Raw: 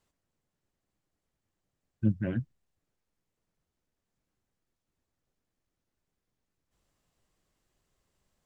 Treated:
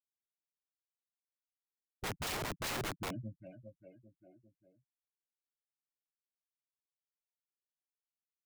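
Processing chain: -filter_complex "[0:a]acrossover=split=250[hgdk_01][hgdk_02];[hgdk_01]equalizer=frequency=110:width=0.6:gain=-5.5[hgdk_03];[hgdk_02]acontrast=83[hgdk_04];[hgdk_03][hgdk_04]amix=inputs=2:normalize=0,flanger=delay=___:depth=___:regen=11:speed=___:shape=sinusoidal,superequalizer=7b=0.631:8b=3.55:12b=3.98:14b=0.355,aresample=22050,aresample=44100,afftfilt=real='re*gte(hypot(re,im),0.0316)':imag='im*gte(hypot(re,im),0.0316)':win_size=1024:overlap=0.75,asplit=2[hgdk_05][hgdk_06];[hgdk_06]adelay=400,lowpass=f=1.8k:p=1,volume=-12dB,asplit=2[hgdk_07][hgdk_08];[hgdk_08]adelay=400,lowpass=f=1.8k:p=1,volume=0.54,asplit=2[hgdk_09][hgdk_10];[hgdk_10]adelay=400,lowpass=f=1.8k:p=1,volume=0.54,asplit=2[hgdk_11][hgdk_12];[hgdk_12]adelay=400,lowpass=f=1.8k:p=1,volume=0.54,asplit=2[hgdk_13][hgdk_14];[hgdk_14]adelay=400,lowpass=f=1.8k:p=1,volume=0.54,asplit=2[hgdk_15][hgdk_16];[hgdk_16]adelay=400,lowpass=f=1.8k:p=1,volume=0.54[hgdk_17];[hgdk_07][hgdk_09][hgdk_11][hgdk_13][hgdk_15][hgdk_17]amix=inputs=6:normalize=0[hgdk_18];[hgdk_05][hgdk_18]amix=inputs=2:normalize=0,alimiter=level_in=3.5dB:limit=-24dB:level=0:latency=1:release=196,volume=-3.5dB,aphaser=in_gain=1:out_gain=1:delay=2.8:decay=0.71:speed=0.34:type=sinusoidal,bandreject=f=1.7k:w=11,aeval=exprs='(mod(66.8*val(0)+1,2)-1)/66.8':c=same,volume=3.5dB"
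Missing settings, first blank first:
6.5, 2.8, 0.85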